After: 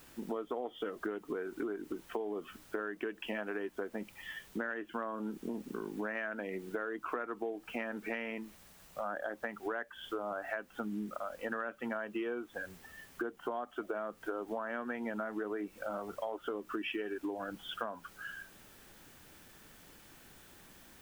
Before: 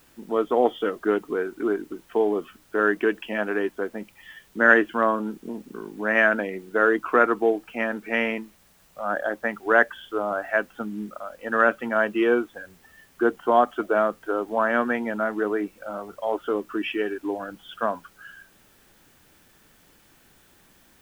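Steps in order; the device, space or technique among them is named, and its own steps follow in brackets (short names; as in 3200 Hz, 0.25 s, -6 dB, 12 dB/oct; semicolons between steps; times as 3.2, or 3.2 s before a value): serial compression, peaks first (compressor, threshold -28 dBFS, peak gain reduction 17 dB; compressor 2.5:1, threshold -37 dBFS, peak gain reduction 8.5 dB)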